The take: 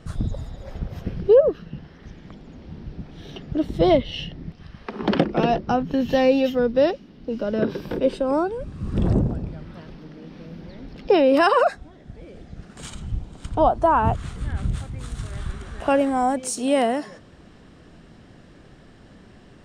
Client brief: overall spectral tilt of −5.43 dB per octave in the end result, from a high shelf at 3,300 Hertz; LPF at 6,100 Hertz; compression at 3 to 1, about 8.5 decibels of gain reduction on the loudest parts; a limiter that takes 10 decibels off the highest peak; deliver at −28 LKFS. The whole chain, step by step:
low-pass filter 6,100 Hz
high-shelf EQ 3,300 Hz +4.5 dB
downward compressor 3 to 1, threshold −23 dBFS
level +3 dB
brickwall limiter −16.5 dBFS

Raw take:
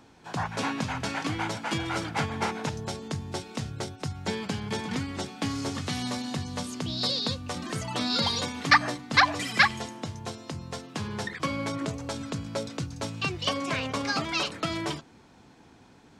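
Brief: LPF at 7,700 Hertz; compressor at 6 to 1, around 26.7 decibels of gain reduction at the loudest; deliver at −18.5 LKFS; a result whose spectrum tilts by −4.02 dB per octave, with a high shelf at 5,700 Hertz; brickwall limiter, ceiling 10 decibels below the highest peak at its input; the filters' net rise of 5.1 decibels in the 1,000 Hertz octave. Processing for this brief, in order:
low-pass filter 7,700 Hz
parametric band 1,000 Hz +6.5 dB
high-shelf EQ 5,700 Hz −8.5 dB
downward compressor 6 to 1, threshold −42 dBFS
level +28 dB
brickwall limiter −7.5 dBFS

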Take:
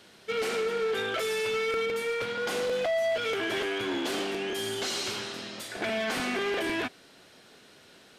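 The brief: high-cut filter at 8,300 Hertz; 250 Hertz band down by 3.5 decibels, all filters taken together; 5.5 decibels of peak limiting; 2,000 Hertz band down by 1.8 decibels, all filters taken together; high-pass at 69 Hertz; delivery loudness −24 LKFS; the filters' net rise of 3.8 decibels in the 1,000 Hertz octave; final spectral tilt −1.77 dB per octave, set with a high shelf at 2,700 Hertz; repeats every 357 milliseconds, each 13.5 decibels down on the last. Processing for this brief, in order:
high-pass filter 69 Hz
low-pass filter 8,300 Hz
parametric band 250 Hz −5.5 dB
parametric band 1,000 Hz +7.5 dB
parametric band 2,000 Hz −7.5 dB
high-shelf EQ 2,700 Hz +6 dB
brickwall limiter −24.5 dBFS
repeating echo 357 ms, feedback 21%, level −13.5 dB
level +7.5 dB

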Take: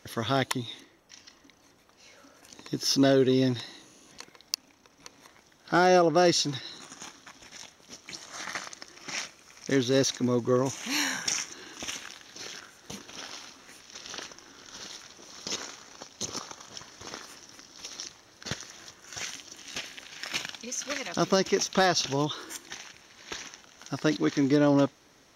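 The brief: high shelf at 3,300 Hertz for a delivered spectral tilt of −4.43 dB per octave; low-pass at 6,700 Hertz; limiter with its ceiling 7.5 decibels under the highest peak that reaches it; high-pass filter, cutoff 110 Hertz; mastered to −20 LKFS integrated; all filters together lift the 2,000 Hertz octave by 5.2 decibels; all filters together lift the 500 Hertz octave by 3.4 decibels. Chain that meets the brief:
high-pass filter 110 Hz
low-pass filter 6,700 Hz
parametric band 500 Hz +4 dB
parametric band 2,000 Hz +8.5 dB
high-shelf EQ 3,300 Hz −7 dB
level +9 dB
brickwall limiter −4.5 dBFS

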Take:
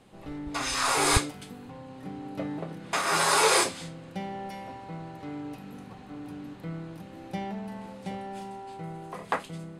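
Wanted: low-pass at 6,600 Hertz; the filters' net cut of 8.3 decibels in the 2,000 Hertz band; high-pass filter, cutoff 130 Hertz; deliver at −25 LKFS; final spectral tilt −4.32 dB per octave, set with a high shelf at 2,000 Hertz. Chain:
high-pass filter 130 Hz
low-pass filter 6,600 Hz
high-shelf EQ 2,000 Hz −7 dB
parametric band 2,000 Hz −7 dB
level +9.5 dB

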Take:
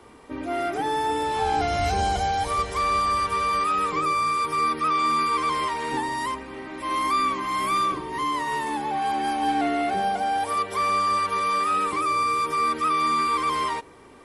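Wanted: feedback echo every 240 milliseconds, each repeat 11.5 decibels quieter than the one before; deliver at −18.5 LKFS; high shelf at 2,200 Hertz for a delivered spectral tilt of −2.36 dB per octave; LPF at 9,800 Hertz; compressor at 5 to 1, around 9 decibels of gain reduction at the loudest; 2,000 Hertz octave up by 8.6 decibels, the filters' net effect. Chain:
low-pass filter 9,800 Hz
parametric band 2,000 Hz +5.5 dB
high-shelf EQ 2,200 Hz +8.5 dB
downward compressor 5 to 1, threshold −26 dBFS
repeating echo 240 ms, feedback 27%, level −11.5 dB
level +8.5 dB

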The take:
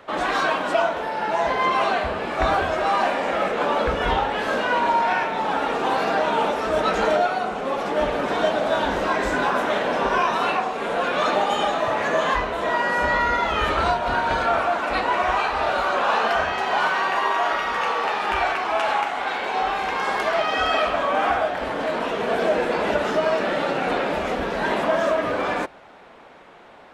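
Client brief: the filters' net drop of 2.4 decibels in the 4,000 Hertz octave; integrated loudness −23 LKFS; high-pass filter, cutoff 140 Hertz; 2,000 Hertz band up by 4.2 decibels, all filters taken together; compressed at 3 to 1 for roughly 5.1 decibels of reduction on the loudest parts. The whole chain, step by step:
high-pass filter 140 Hz
parametric band 2,000 Hz +7 dB
parametric band 4,000 Hz −7 dB
downward compressor 3 to 1, threshold −22 dBFS
level +1.5 dB

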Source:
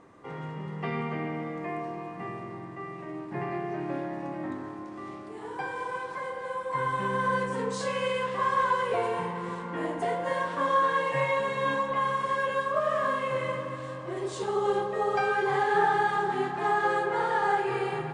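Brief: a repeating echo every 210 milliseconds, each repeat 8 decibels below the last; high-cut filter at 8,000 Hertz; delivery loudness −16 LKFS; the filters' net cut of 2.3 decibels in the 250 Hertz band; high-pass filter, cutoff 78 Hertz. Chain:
high-pass filter 78 Hz
low-pass filter 8,000 Hz
parametric band 250 Hz −3.5 dB
repeating echo 210 ms, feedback 40%, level −8 dB
level +12.5 dB

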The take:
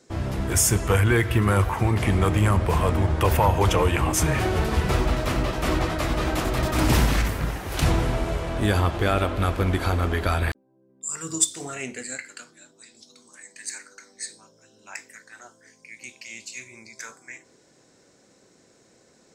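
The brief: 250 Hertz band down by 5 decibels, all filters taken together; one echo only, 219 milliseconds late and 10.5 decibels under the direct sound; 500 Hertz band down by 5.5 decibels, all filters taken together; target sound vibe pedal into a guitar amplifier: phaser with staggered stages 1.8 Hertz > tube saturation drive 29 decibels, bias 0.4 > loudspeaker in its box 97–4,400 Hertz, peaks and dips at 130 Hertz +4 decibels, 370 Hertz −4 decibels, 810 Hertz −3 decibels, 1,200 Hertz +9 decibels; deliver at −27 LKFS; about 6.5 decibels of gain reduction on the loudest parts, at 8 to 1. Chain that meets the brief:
parametric band 250 Hz −5 dB
parametric band 500 Hz −4 dB
downward compressor 8 to 1, threshold −23 dBFS
single-tap delay 219 ms −10.5 dB
phaser with staggered stages 1.8 Hz
tube saturation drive 29 dB, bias 0.4
loudspeaker in its box 97–4,400 Hz, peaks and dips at 130 Hz +4 dB, 370 Hz −4 dB, 810 Hz −3 dB, 1,200 Hz +9 dB
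level +9.5 dB

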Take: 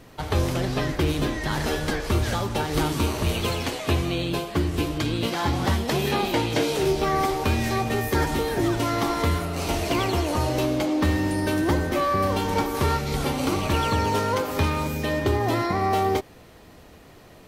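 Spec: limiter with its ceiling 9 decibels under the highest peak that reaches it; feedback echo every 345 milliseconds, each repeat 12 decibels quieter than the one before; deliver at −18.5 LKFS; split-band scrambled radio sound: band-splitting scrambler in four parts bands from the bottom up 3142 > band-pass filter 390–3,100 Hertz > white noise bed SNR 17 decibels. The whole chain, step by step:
brickwall limiter −20.5 dBFS
repeating echo 345 ms, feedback 25%, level −12 dB
band-splitting scrambler in four parts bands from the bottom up 3142
band-pass filter 390–3,100 Hz
white noise bed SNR 17 dB
level +9 dB

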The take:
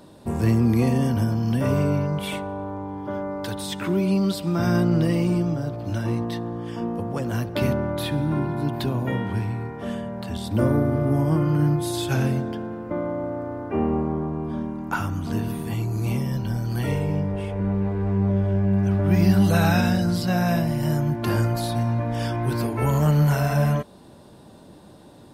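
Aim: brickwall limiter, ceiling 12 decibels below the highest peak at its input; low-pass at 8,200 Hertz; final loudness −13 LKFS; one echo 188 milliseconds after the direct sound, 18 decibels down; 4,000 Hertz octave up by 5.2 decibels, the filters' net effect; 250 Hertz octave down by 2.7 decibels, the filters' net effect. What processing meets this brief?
low-pass filter 8,200 Hz
parametric band 250 Hz −4 dB
parametric band 4,000 Hz +6.5 dB
brickwall limiter −20 dBFS
single-tap delay 188 ms −18 dB
level +16 dB

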